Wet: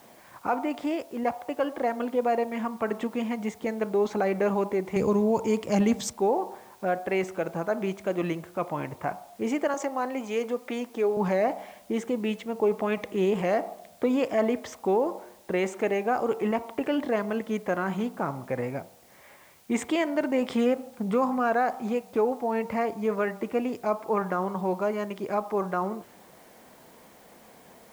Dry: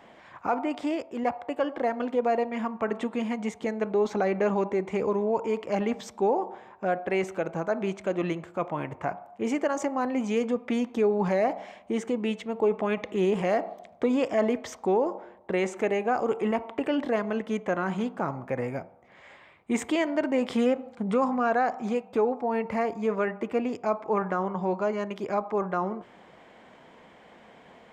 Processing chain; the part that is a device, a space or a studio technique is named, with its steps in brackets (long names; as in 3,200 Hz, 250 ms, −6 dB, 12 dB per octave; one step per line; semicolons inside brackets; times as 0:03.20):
0:04.96–0:06.13: bass and treble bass +11 dB, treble +14 dB
0:09.74–0:11.17: high-pass filter 330 Hz 12 dB per octave
plain cassette with noise reduction switched in (one half of a high-frequency compander decoder only; tape wow and flutter 26 cents; white noise bed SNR 31 dB)